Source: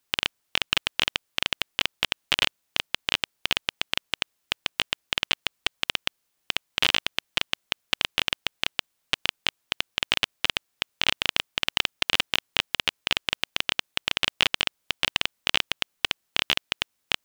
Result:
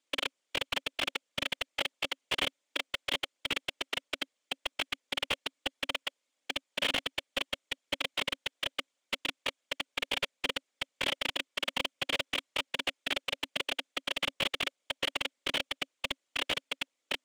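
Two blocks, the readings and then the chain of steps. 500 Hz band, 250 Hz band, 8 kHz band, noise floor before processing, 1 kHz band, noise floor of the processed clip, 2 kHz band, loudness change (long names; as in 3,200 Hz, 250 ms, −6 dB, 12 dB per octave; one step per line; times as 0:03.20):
−0.5 dB, −3.0 dB, −7.5 dB, −76 dBFS, −6.0 dB, −84 dBFS, −7.0 dB, −7.5 dB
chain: random phases in short frames
loudspeaker in its box 270–8,800 Hz, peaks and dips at 270 Hz +10 dB, 550 Hz +10 dB, 2,200 Hz +5 dB, 3,300 Hz +5 dB, 7,100 Hz +4 dB
slew-rate limiting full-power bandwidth 280 Hz
level −6.5 dB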